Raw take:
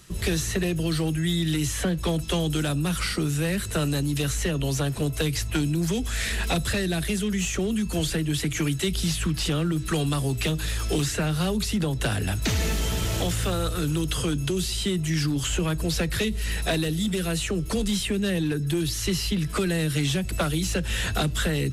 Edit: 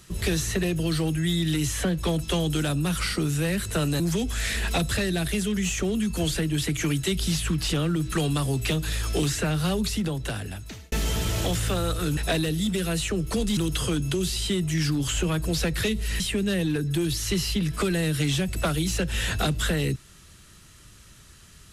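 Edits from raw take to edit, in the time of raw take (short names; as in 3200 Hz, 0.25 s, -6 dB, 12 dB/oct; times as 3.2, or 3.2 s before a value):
4–5.76 cut
11.58–12.68 fade out
16.56–17.96 move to 13.93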